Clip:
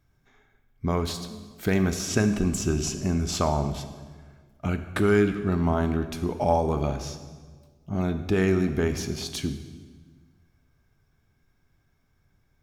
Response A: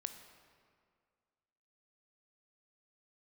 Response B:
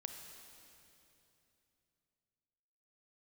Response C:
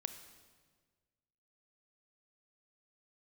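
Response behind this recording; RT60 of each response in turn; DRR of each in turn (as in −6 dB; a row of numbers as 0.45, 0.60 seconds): C; 2.1, 3.0, 1.5 seconds; 7.5, 4.5, 9.0 decibels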